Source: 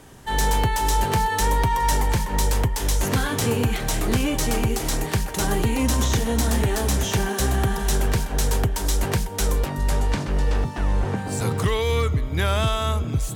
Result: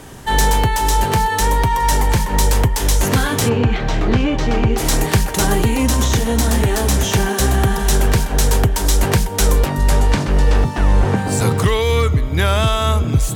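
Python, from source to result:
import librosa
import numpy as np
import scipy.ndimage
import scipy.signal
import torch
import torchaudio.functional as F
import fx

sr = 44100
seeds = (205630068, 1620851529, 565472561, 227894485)

y = fx.rider(x, sr, range_db=10, speed_s=0.5)
y = fx.air_absorb(y, sr, metres=200.0, at=(3.48, 4.77), fade=0.02)
y = F.gain(torch.from_numpy(y), 6.5).numpy()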